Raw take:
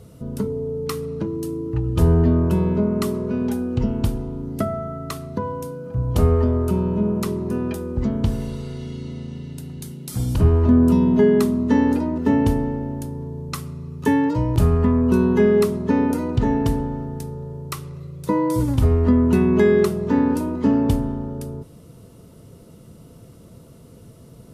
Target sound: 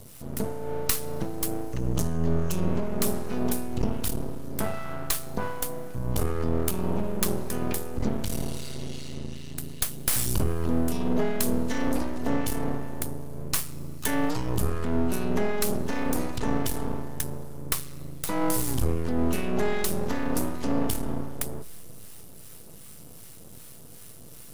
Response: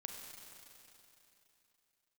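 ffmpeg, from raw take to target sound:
-filter_complex "[0:a]asettb=1/sr,asplit=3[a][b][c];[a]atrim=end=1.724[d];[b]atrim=start=1.72:end=2.68,asetpts=PTS-STARTPTS,afade=t=in:d=0.004:c=qsin,afade=t=out:st=0.956:d=0.004:c=qsin,equalizer=f=160:t=o:w=0.33:g=8,equalizer=f=6.3k:t=o:w=0.33:g=10,equalizer=f=12.5k:t=o:w=0.33:g=-6[e];[c]atrim=start=2.676[f];[d][e]acrossfade=d=0.004:c1=hsin:c2=qsin[g];[g][f]acrossfade=d=0.004:c1=qsin:c2=hsin,alimiter=limit=-14dB:level=0:latency=1:release=44,crystalizer=i=5.5:c=0,acrossover=split=1200[h][i];[h]aeval=exprs='val(0)*(1-0.5/2+0.5/2*cos(2*PI*2.6*n/s))':c=same[j];[i]aeval=exprs='val(0)*(1-0.5/2-0.5/2*cos(2*PI*2.6*n/s))':c=same[k];[j][k]amix=inputs=2:normalize=0,aeval=exprs='max(val(0),0)':c=same,asplit=2[l][m];[1:a]atrim=start_sample=2205,asetrate=52920,aresample=44100[n];[m][n]afir=irnorm=-1:irlink=0,volume=-11dB[o];[l][o]amix=inputs=2:normalize=0,volume=-1dB"

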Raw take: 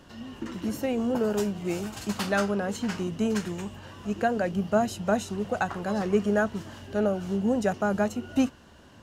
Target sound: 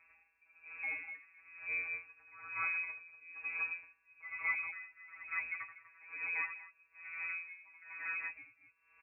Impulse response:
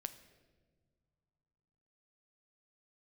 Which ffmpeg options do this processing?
-filter_complex "[0:a]asettb=1/sr,asplit=3[a][b][c];[a]atrim=end=2.234[d];[b]atrim=start=2.23:end=3.5,asetpts=PTS-STARTPTS,afade=t=in:d=0.004:c=qsin,afade=t=out:st=1.266:d=0.004:c=qsin,lowshelf=f=110:t=q:w=3:g=-12[e];[c]atrim=start=3.496[f];[d][e]acrossfade=d=0.004:c1=hsin:c2=qsin[g];[g][f]acrossfade=d=0.004:c1=qsin:c2=hsin,afftfilt=real='hypot(re,im)*cos(PI*b)':imag='0':win_size=1024:overlap=0.75,aecho=1:1:78.72|198.3|242:0.708|0.398|1,lowpass=f=2.3k:t=q:w=0.5098,lowpass=f=2.3k:t=q:w=0.6013,lowpass=f=2.3k:t=q:w=0.9,lowpass=f=2.3k:t=q:w=2.563,afreqshift=-2700,aeval=exprs='val(0)*pow(10,-23*(0.5-0.5*cos(2*PI*1.1*n/s))/20)':c=same,volume=-8.5dB"

